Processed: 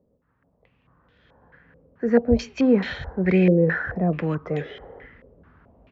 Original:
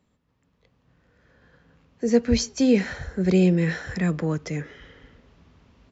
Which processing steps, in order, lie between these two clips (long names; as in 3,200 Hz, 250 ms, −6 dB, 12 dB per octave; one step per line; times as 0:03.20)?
gain on a spectral selection 0:04.50–0:05.06, 350–820 Hz +9 dB
low-pass on a step sequencer 4.6 Hz 520–3,400 Hz